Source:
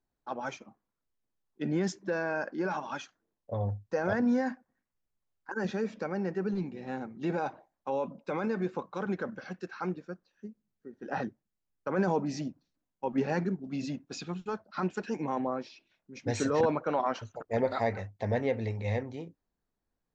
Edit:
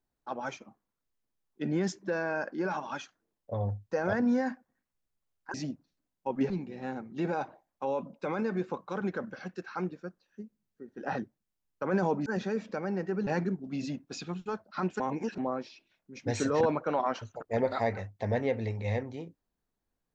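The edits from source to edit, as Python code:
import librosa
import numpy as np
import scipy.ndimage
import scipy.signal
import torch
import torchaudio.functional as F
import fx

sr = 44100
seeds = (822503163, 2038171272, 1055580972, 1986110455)

y = fx.edit(x, sr, fx.swap(start_s=5.54, length_s=1.01, other_s=12.31, other_length_s=0.96),
    fx.reverse_span(start_s=15.0, length_s=0.38), tone=tone)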